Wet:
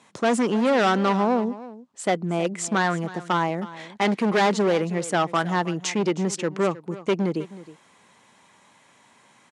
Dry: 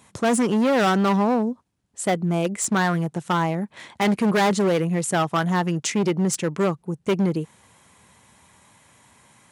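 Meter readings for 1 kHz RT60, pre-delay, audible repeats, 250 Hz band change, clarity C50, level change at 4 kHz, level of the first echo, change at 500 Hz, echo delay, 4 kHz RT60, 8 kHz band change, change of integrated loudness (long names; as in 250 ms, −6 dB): no reverb audible, no reverb audible, 1, −3.0 dB, no reverb audible, −0.5 dB, −17.0 dB, 0.0 dB, 315 ms, no reverb audible, −4.5 dB, −1.5 dB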